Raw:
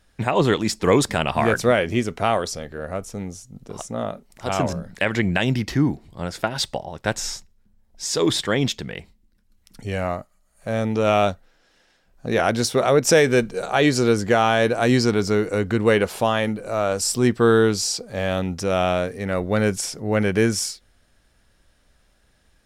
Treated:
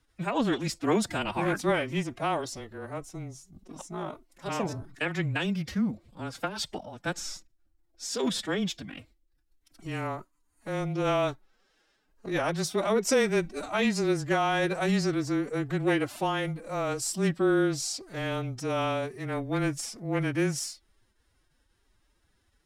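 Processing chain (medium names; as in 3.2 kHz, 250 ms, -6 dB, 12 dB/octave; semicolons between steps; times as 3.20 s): formant-preserving pitch shift +8.5 st; frequency shift -19 Hz; trim -8 dB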